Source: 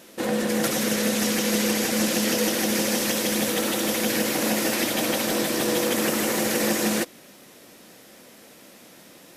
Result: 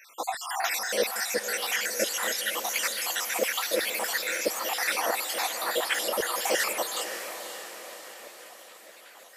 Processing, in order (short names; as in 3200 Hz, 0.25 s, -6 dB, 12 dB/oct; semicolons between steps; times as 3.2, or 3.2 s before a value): random spectral dropouts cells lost 67%; LFO high-pass saw down 2.9 Hz 470–2100 Hz; diffused feedback echo 0.554 s, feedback 53%, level -9 dB